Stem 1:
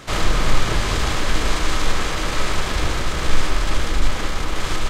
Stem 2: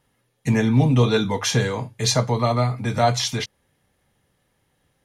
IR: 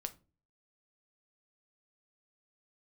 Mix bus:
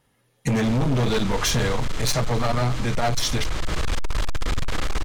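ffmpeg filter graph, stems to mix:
-filter_complex "[0:a]highshelf=f=3.7k:g=-3.5,acrossover=split=150|3000[a][b][c];[b]acompressor=threshold=-29dB:ratio=2[d];[a][d][c]amix=inputs=3:normalize=0,aeval=exprs='0.266*(abs(mod(val(0)/0.266+3,4)-2)-1)':c=same,adelay=550,volume=-2.5dB,asplit=3[e][f][g];[f]volume=-5dB[h];[g]volume=-13.5dB[i];[1:a]volume=1.5dB,asplit=2[j][k];[k]apad=whole_len=240223[l];[e][l]sidechaincompress=threshold=-37dB:ratio=8:attack=16:release=520[m];[2:a]atrim=start_sample=2205[n];[h][n]afir=irnorm=-1:irlink=0[o];[i]aecho=0:1:335|670|1005|1340|1675|2010|2345|2680|3015:1|0.59|0.348|0.205|0.121|0.0715|0.0422|0.0249|0.0147[p];[m][j][o][p]amix=inputs=4:normalize=0,dynaudnorm=f=180:g=3:m=6dB,volume=15.5dB,asoftclip=hard,volume=-15.5dB,acompressor=threshold=-19dB:ratio=6"

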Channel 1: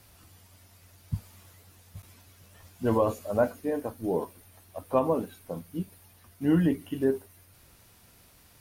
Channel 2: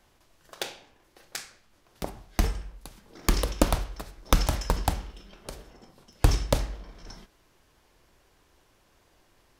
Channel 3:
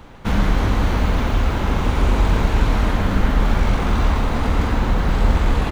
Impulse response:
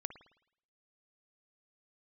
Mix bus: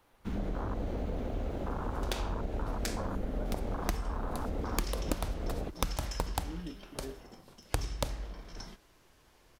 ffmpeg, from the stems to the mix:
-filter_complex "[0:a]volume=-19dB[a];[1:a]adelay=1500,volume=0dB[b];[2:a]afwtdn=0.1,bass=f=250:g=-12,treble=f=4k:g=2,acrossover=split=180[c][d];[d]acompressor=threshold=-30dB:ratio=6[e];[c][e]amix=inputs=2:normalize=0,volume=-5dB[f];[a][b][f]amix=inputs=3:normalize=0,acompressor=threshold=-29dB:ratio=6"

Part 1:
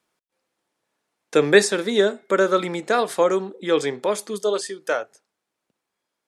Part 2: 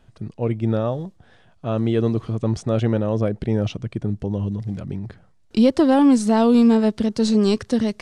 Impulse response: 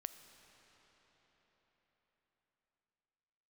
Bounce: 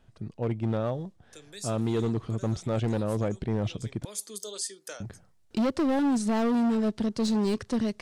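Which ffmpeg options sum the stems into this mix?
-filter_complex "[0:a]bass=f=250:g=-3,treble=f=4k:g=11,acrossover=split=210|3000[a][b][c];[b]acompressor=threshold=-37dB:ratio=2.5[d];[a][d][c]amix=inputs=3:normalize=0,volume=-9.5dB,afade=t=in:st=3.84:d=0.49:silence=0.223872[e];[1:a]volume=-6dB,asplit=3[f][g][h];[f]atrim=end=4.05,asetpts=PTS-STARTPTS,afade=t=out:st=4.046:d=0.004:c=hsin[i];[g]atrim=start=4.05:end=5,asetpts=PTS-STARTPTS,volume=0[j];[h]atrim=start=5,asetpts=PTS-STARTPTS,afade=t=in:d=0.004:c=hsin[k];[i][j][k]concat=n=3:v=0:a=1[l];[e][l]amix=inputs=2:normalize=0,asoftclip=type=hard:threshold=-22dB"

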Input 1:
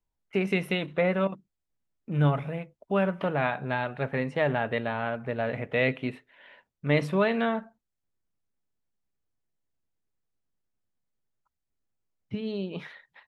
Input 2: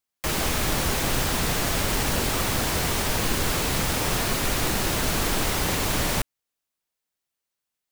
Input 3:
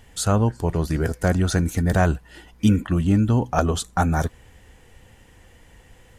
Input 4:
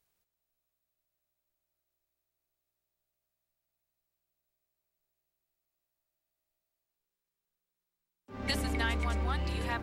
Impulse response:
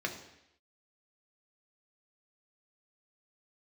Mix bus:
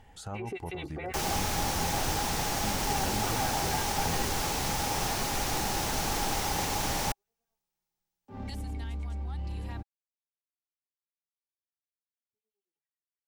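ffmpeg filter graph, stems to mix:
-filter_complex "[0:a]aecho=1:1:2.6:0.88,alimiter=limit=-19.5dB:level=0:latency=1,acrossover=split=1200[a][b];[a]aeval=exprs='val(0)*(1-1/2+1/2*cos(2*PI*9.3*n/s))':c=same[c];[b]aeval=exprs='val(0)*(1-1/2-1/2*cos(2*PI*9.3*n/s))':c=same[d];[c][d]amix=inputs=2:normalize=0,volume=-0.5dB[e];[1:a]equalizer=f=5.8k:t=o:w=0.55:g=5.5,adelay=900,volume=-7.5dB[f];[2:a]acompressor=threshold=-48dB:ratio=1.5,aemphasis=mode=reproduction:type=cd,volume=-6dB,asplit=2[g][h];[3:a]lowshelf=f=380:g=10.5,acrossover=split=270|3000[i][j][k];[j]acompressor=threshold=-41dB:ratio=3[l];[i][l][k]amix=inputs=3:normalize=0,volume=-5.5dB[m];[h]apad=whole_len=585336[n];[e][n]sidechaingate=range=-59dB:threshold=-45dB:ratio=16:detection=peak[o];[o][g][m]amix=inputs=3:normalize=0,alimiter=level_in=6dB:limit=-24dB:level=0:latency=1:release=61,volume=-6dB,volume=0dB[p];[f][p]amix=inputs=2:normalize=0,equalizer=f=820:w=6.7:g=13.5"

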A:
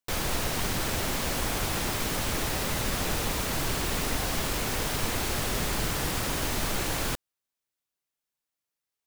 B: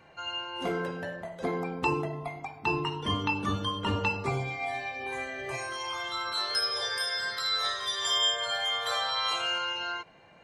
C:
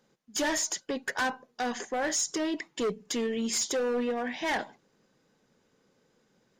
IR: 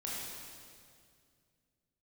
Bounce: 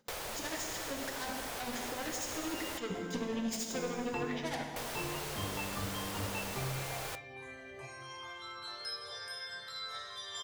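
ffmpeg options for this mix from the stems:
-filter_complex "[0:a]lowshelf=f=340:t=q:w=1.5:g=-12,volume=0dB,asplit=3[a][b][c];[a]atrim=end=2.78,asetpts=PTS-STARTPTS,afade=t=out:st=2.776:d=0.004:c=hsin[d];[b]atrim=start=2.78:end=4.76,asetpts=PTS-STARTPTS,volume=0[e];[c]atrim=start=4.76,asetpts=PTS-STARTPTS,afade=t=in:d=0.004:c=hsin[f];[d][e][f]concat=n=3:v=0:a=1[g];[1:a]adelay=2300,volume=-15.5dB,asplit=2[h][i];[i]volume=-6dB[j];[2:a]aeval=exprs='0.0841*sin(PI/2*2.24*val(0)/0.0841)':c=same,tremolo=f=13:d=0.8,volume=-10.5dB,asplit=3[k][l][m];[l]volume=-6dB[n];[m]apad=whole_len=399810[o];[g][o]sidechaincompress=threshold=-39dB:ratio=8:attack=16:release=749[p];[p][k]amix=inputs=2:normalize=0,flanger=delay=3.2:depth=8.3:regen=-83:speed=0.74:shape=triangular,acompressor=threshold=-39dB:ratio=4,volume=0dB[q];[3:a]atrim=start_sample=2205[r];[j][n]amix=inputs=2:normalize=0[s];[s][r]afir=irnorm=-1:irlink=0[t];[h][q][t]amix=inputs=3:normalize=0,equalizer=f=100:t=o:w=2.1:g=5.5"

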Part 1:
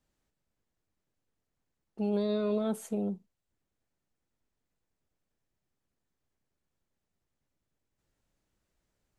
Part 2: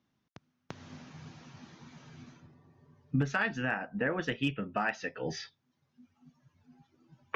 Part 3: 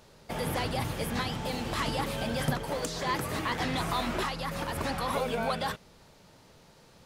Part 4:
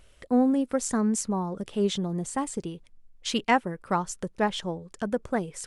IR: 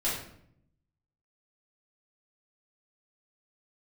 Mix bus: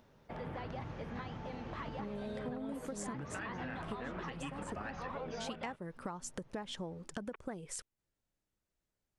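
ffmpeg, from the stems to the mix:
-filter_complex "[0:a]volume=-8.5dB[a];[1:a]acompressor=mode=upward:threshold=-45dB:ratio=2.5,volume=-10.5dB,asplit=2[b][c];[2:a]lowpass=2k,volume=-9dB[d];[3:a]acompressor=threshold=-34dB:ratio=2.5,adelay=2150,volume=-2dB[e];[c]apad=whole_len=344847[f];[e][f]sidechaincompress=threshold=-58dB:ratio=8:attack=47:release=101[g];[a][b][d][g]amix=inputs=4:normalize=0,acompressor=threshold=-38dB:ratio=6"

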